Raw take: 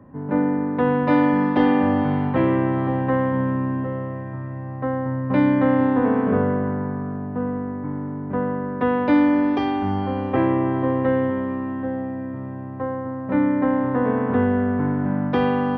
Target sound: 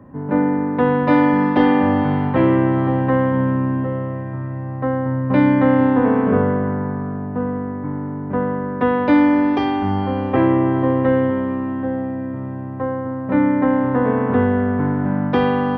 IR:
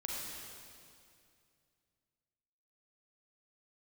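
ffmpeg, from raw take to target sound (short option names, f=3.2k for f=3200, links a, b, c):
-filter_complex "[0:a]asplit=2[a][b];[1:a]atrim=start_sample=2205,atrim=end_sample=3528[c];[b][c]afir=irnorm=-1:irlink=0,volume=-6dB[d];[a][d]amix=inputs=2:normalize=0,volume=1dB"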